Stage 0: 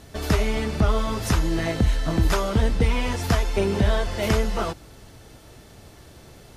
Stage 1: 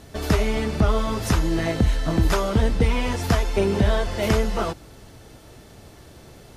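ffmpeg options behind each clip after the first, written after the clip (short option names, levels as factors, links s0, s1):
-af "equalizer=f=340:w=0.38:g=2"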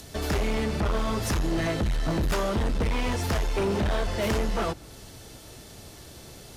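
-filter_complex "[0:a]acrossover=split=330|840|3100[s0][s1][s2][s3];[s3]acompressor=mode=upward:threshold=0.00891:ratio=2.5[s4];[s0][s1][s2][s4]amix=inputs=4:normalize=0,asoftclip=type=hard:threshold=0.0841,volume=0.891"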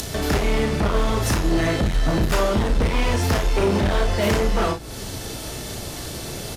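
-filter_complex "[0:a]acompressor=mode=upward:threshold=0.0398:ratio=2.5,asplit=2[s0][s1];[s1]aecho=0:1:34|54:0.473|0.335[s2];[s0][s2]amix=inputs=2:normalize=0,volume=1.78"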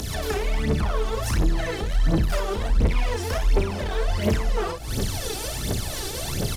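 -af "alimiter=limit=0.0794:level=0:latency=1:release=184,aphaser=in_gain=1:out_gain=1:delay=2.7:decay=0.72:speed=1.4:type=triangular"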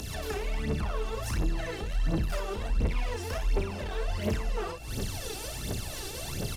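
-af "aeval=exprs='val(0)+0.00631*sin(2*PI*2700*n/s)':c=same,volume=0.422"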